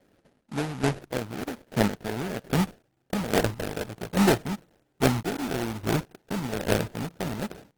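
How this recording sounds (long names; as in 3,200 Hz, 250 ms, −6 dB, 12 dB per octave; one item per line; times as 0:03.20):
chopped level 1.2 Hz, depth 65%, duty 25%
aliases and images of a low sample rate 1,100 Hz, jitter 20%
Opus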